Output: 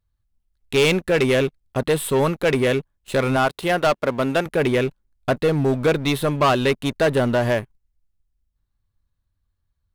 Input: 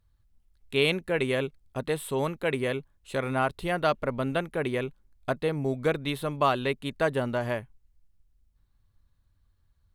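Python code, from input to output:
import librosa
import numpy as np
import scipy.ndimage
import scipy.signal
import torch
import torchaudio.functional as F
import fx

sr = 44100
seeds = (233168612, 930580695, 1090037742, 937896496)

y = fx.highpass(x, sr, hz=290.0, slope=6, at=(3.36, 4.46))
y = fx.leveller(y, sr, passes=3)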